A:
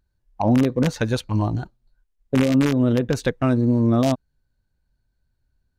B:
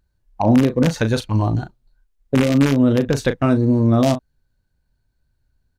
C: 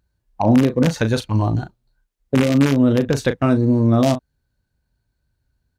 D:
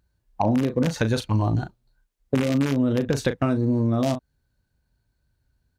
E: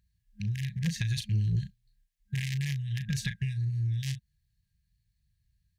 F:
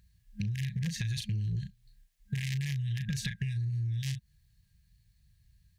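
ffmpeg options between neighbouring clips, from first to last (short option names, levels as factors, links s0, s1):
-filter_complex "[0:a]asplit=2[s0][s1];[s1]adelay=36,volume=0.316[s2];[s0][s2]amix=inputs=2:normalize=0,volume=1.41"
-af "highpass=43"
-af "acompressor=threshold=0.126:ratio=6"
-af "afftfilt=real='re*(1-between(b*sr/4096,210,1600))':imag='im*(1-between(b*sr/4096,210,1600))':win_size=4096:overlap=0.75,asoftclip=type=tanh:threshold=0.168,volume=0.708"
-filter_complex "[0:a]asplit=2[s0][s1];[s1]alimiter=level_in=1.78:limit=0.0631:level=0:latency=1,volume=0.562,volume=0.944[s2];[s0][s2]amix=inputs=2:normalize=0,acompressor=threshold=0.02:ratio=6,volume=1.41"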